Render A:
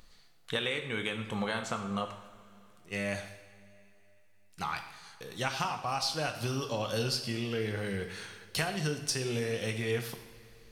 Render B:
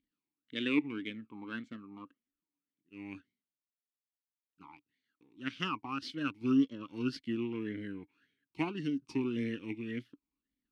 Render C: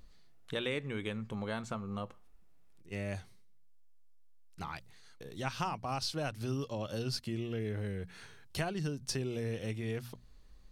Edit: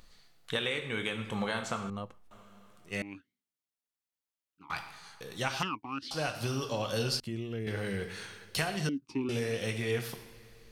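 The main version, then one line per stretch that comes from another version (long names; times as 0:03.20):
A
0:01.90–0:02.31: punch in from C
0:03.02–0:04.70: punch in from B
0:05.63–0:06.11: punch in from B
0:07.20–0:07.67: punch in from C
0:08.89–0:09.29: punch in from B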